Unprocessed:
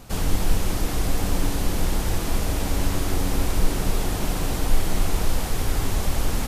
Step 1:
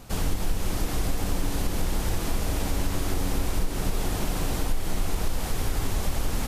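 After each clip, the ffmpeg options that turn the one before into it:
-af "acompressor=threshold=0.126:ratio=6,volume=0.841"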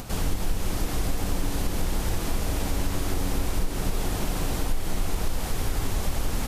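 -af "acompressor=mode=upward:threshold=0.0316:ratio=2.5"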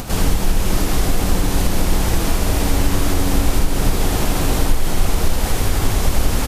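-af "aecho=1:1:79:0.473,volume=2.82"

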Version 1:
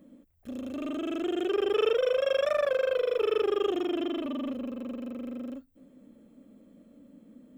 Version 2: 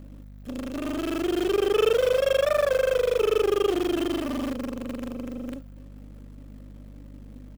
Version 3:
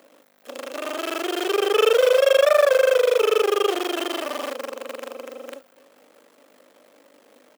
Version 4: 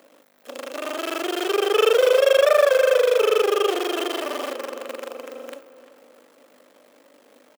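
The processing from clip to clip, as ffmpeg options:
-filter_complex "[0:a]aecho=1:1:247|494|741|988:0.0708|0.0382|0.0206|0.0111,aeval=exprs='val(0)+0.00562*(sin(2*PI*50*n/s)+sin(2*PI*2*50*n/s)/2+sin(2*PI*3*50*n/s)/3+sin(2*PI*4*50*n/s)/4+sin(2*PI*5*50*n/s)/5)':c=same,asplit=2[s0][s1];[s1]acrusher=bits=6:dc=4:mix=0:aa=0.000001,volume=0.596[s2];[s0][s2]amix=inputs=2:normalize=0"
-af "highpass=f=460:w=0.5412,highpass=f=460:w=1.3066,volume=2.24"
-filter_complex "[0:a]asplit=2[s0][s1];[s1]adelay=348,lowpass=f=2300:p=1,volume=0.211,asplit=2[s2][s3];[s3]adelay=348,lowpass=f=2300:p=1,volume=0.49,asplit=2[s4][s5];[s5]adelay=348,lowpass=f=2300:p=1,volume=0.49,asplit=2[s6][s7];[s7]adelay=348,lowpass=f=2300:p=1,volume=0.49,asplit=2[s8][s9];[s9]adelay=348,lowpass=f=2300:p=1,volume=0.49[s10];[s0][s2][s4][s6][s8][s10]amix=inputs=6:normalize=0"

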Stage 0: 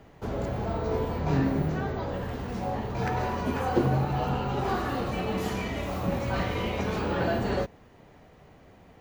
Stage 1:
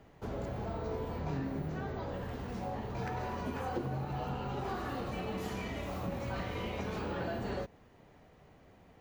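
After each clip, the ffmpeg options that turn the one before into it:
-af "acompressor=threshold=0.0398:ratio=3,volume=0.501"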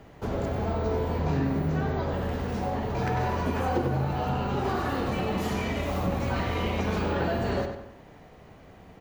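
-filter_complex "[0:a]asplit=2[s0][s1];[s1]adelay=96,lowpass=f=4200:p=1,volume=0.473,asplit=2[s2][s3];[s3]adelay=96,lowpass=f=4200:p=1,volume=0.45,asplit=2[s4][s5];[s5]adelay=96,lowpass=f=4200:p=1,volume=0.45,asplit=2[s6][s7];[s7]adelay=96,lowpass=f=4200:p=1,volume=0.45,asplit=2[s8][s9];[s9]adelay=96,lowpass=f=4200:p=1,volume=0.45[s10];[s0][s2][s4][s6][s8][s10]amix=inputs=6:normalize=0,volume=2.66"

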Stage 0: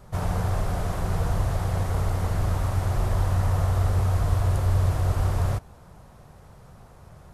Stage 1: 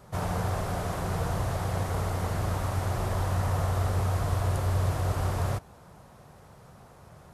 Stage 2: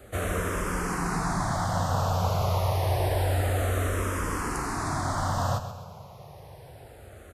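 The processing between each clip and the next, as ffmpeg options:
-af "highpass=f=130:p=1"
-filter_complex "[0:a]acrossover=split=340|1400|3400[s0][s1][s2][s3];[s0]asoftclip=type=tanh:threshold=0.0299[s4];[s4][s1][s2][s3]amix=inputs=4:normalize=0,aecho=1:1:131|262|393|524|655:0.282|0.13|0.0596|0.0274|0.0126,asplit=2[s5][s6];[s6]afreqshift=-0.28[s7];[s5][s7]amix=inputs=2:normalize=1,volume=2.37"

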